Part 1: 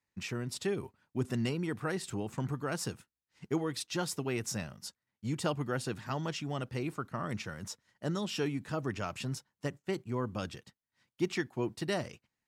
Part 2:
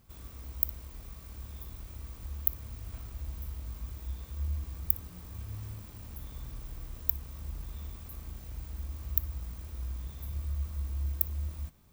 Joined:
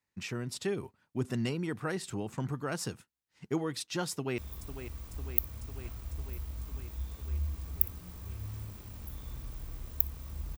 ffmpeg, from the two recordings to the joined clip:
-filter_complex "[0:a]apad=whole_dur=10.57,atrim=end=10.57,atrim=end=4.382[a];[1:a]atrim=start=1.468:end=7.66[b];[a][b]acrossfade=d=0.004:c1=hsin:c2=hsin,asplit=2[c][d];[d]afade=t=in:st=4.11:d=0.01,afade=t=out:st=4.38:d=0.01,aecho=0:1:500|1000|1500|2000|2500|3000|3500|4000|4500|5000|5500|6000:0.298538|0.223904|0.167928|0.125946|0.0944594|0.0708445|0.0531334|0.03985|0.0298875|0.0224157|0.0168117|0.0126088[e];[c][e]amix=inputs=2:normalize=0"

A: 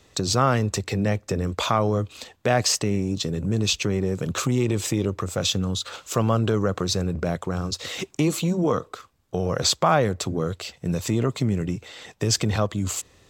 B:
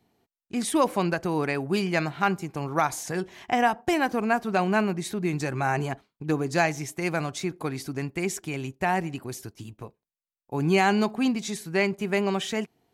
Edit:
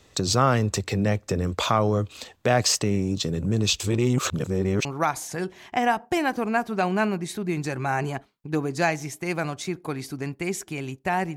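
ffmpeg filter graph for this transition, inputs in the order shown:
-filter_complex "[0:a]apad=whole_dur=11.36,atrim=end=11.36,asplit=2[a][b];[a]atrim=end=3.802[c];[b]atrim=start=3.798:end=4.852,asetpts=PTS-STARTPTS,areverse[d];[1:a]atrim=start=2.608:end=9.12[e];[c][d]acrossfade=d=0.004:c1=hsin:c2=hsin[f];[f][e]acrossfade=d=0.004:c1=hsin:c2=hsin"

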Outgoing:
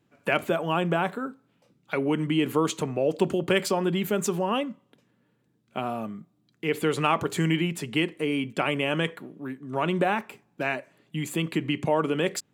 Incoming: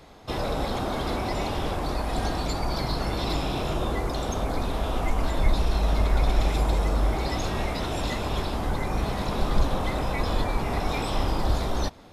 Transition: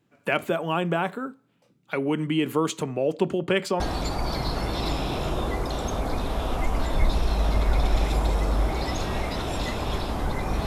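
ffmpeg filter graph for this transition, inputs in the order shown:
-filter_complex "[0:a]asettb=1/sr,asplit=3[a][b][c];[a]atrim=end=3.144[d];[b]atrim=start=3.14:end=3.8,asetpts=PTS-STARTPTS,afade=t=in:d=0.004:c=qsin,afade=t=out:st=0.656:d=0.004:c=qsin,highshelf=f=8.1k:g=-11.5[e];[c]atrim=start=3.796[f];[d][e]acrossfade=d=0.004:c1=hsin:c2=qsin[g];[g][f]acrossfade=d=0.004:c1=qsin:c2=hsin,apad=whole_dur=10.66,atrim=end=10.66,atrim=end=3.802[h];[1:a]atrim=start=2.238:end=9.1[i];[h][i]acrossfade=d=0.004:c1=hsin:c2=hsin"

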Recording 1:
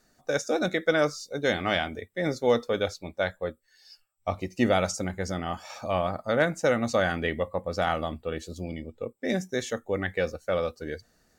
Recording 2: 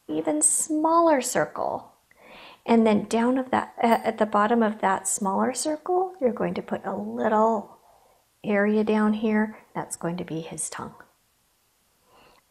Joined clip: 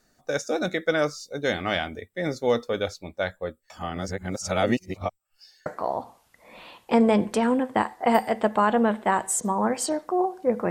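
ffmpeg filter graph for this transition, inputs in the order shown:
-filter_complex "[0:a]apad=whole_dur=10.7,atrim=end=10.7,asplit=2[a][b];[a]atrim=end=3.702[c];[b]atrim=start=3.698:end=5.662,asetpts=PTS-STARTPTS,areverse[d];[1:a]atrim=start=1.428:end=6.47[e];[c][d]acrossfade=d=0.004:c1=hsin:c2=hsin[f];[f][e]acrossfade=d=0.004:c1=hsin:c2=hsin"

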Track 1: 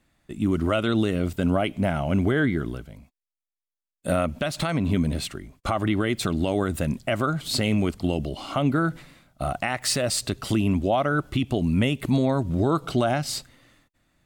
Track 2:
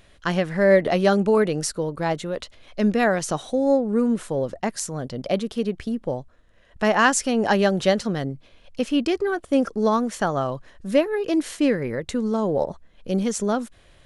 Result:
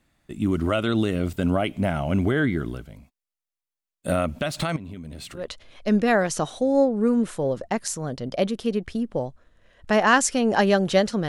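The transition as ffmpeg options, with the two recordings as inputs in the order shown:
-filter_complex "[0:a]asettb=1/sr,asplit=3[a][b][c];[a]atrim=end=4.764[d];[b]atrim=start=4.76:end=5.48,asetpts=PTS-STARTPTS,afade=t=in:d=0.004:c=qsin,afade=t=out:st=0.716:d=0.004:c=qsin,acompressor=threshold=-34dB:ratio=8:attack=3.2:release=140:knee=1:detection=peak[e];[c]atrim=start=5.476[f];[d][e]acrossfade=d=0.004:c1=hsin:c2=qsin[g];[g][f]acrossfade=d=0.004:c1=qsin:c2=hsin,apad=whole_dur=11.28,atrim=end=11.28,atrim=end=5.48,asetpts=PTS-STARTPTS[h];[1:a]atrim=start=2.24:end=8.2,asetpts=PTS-STARTPTS[i];[h][i]acrossfade=d=0.16:c1=tri:c2=tri"

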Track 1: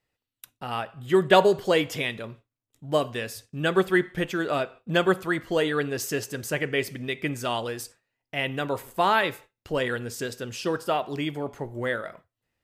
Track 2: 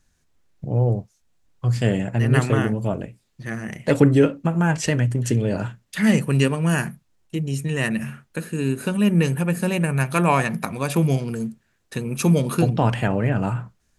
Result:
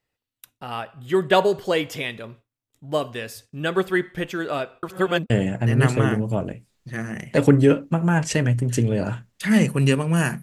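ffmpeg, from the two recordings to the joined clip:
-filter_complex "[0:a]apad=whole_dur=10.42,atrim=end=10.42,asplit=2[a][b];[a]atrim=end=4.832[c];[b]atrim=start=4.828:end=5.302,asetpts=PTS-STARTPTS,areverse[d];[1:a]atrim=start=1.828:end=6.95[e];[c][d]acrossfade=d=0.004:c1=hsin:c2=hsin[f];[f][e]acrossfade=d=0.004:c1=hsin:c2=hsin"

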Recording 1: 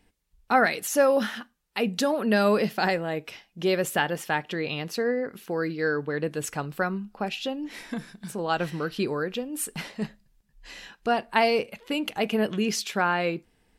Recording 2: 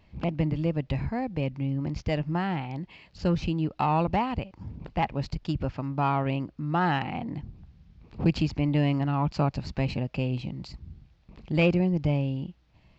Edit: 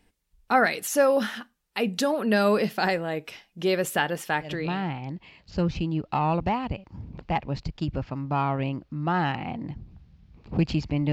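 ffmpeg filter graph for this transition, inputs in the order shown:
-filter_complex "[0:a]apad=whole_dur=11.12,atrim=end=11.12,atrim=end=4.87,asetpts=PTS-STARTPTS[a];[1:a]atrim=start=2.06:end=8.79,asetpts=PTS-STARTPTS[b];[a][b]acrossfade=d=0.48:c1=qsin:c2=qsin"

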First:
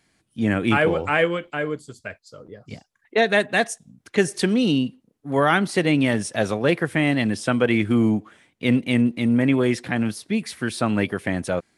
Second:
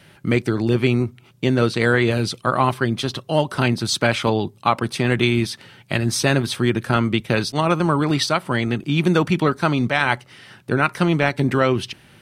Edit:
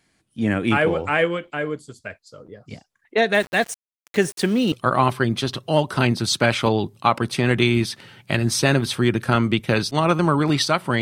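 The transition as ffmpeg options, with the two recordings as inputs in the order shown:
-filter_complex "[0:a]asettb=1/sr,asplit=3[a][b][c];[a]atrim=end=3.344[d];[b]atrim=start=3.34:end=4.72,asetpts=PTS-STARTPTS,afade=t=in:d=0.004:c=qsin,afade=t=out:st=1.376:d=0.004:c=qsin,aeval=exprs='val(0)*gte(abs(val(0)),0.0211)':c=same[e];[c]atrim=start=4.716[f];[d][e]acrossfade=d=0.004:c1=hsin:c2=qsin[g];[g][f]acrossfade=d=0.004:c1=qsin:c2=hsin,apad=whole_dur=11.01,atrim=end=11.01,atrim=end=4.722[h];[1:a]atrim=start=2.328:end=8.62[i];[h][i]acrossfade=d=0.004:c1=hsin:c2=hsin"

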